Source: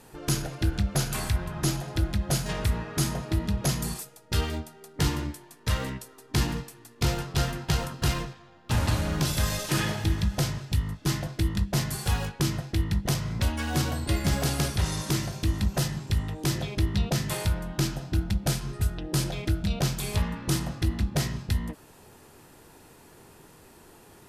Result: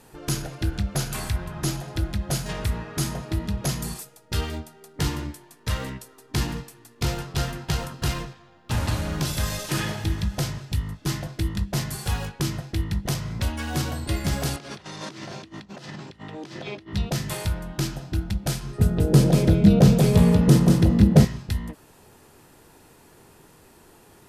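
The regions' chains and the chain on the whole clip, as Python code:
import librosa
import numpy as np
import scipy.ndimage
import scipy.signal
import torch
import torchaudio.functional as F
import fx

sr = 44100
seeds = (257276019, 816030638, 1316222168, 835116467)

y = fx.chain(x, sr, fx.over_compress(threshold_db=-34.0, ratio=-1.0),
    fx.bandpass_edges(low_hz=220.0, high_hz=4600.0), at=(14.56, 16.93))
y = fx.chain(y, sr, fx.small_body(hz=(200.0, 450.0), ring_ms=25, db=17),
    fx.echo_single(ms=188, db=-4.0), at=(18.78, 21.25))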